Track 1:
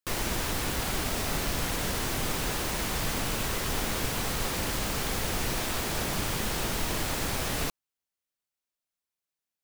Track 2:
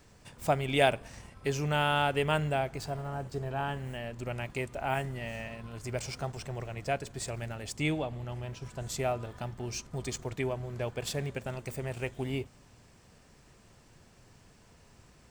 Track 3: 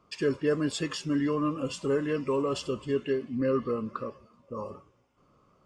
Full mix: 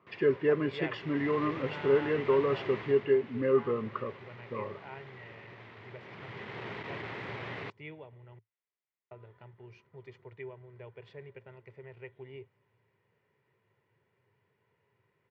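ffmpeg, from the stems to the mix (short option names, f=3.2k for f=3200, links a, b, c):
-filter_complex "[0:a]asoftclip=type=tanh:threshold=-29dB,volume=3.5dB,afade=t=in:st=0.89:d=0.51:silence=0.298538,afade=t=out:st=2.76:d=0.33:silence=0.316228,afade=t=in:st=6:d=0.74:silence=0.266073[a];[1:a]aecho=1:1:2.1:0.38,volume=-17.5dB,asplit=3[b][c][d];[b]atrim=end=8.39,asetpts=PTS-STARTPTS,afade=t=out:st=8.386:d=0.004:c=hsin[e];[c]atrim=start=8.39:end=9.11,asetpts=PTS-STARTPTS,volume=0[f];[d]atrim=start=9.11,asetpts=PTS-STARTPTS,afade=t=in:d=0.004:c=hsin[g];[e][f][g]concat=n=3:v=0:a=1[h];[2:a]volume=-3.5dB[i];[a][h][i]amix=inputs=3:normalize=0,highpass=f=110:w=0.5412,highpass=f=110:w=1.3066,equalizer=f=110:t=q:w=4:g=8,equalizer=f=270:t=q:w=4:g=-3,equalizer=f=400:t=q:w=4:g=8,equalizer=f=1k:t=q:w=4:g=4,equalizer=f=2k:t=q:w=4:g=9,lowpass=f=3.2k:w=0.5412,lowpass=f=3.2k:w=1.3066"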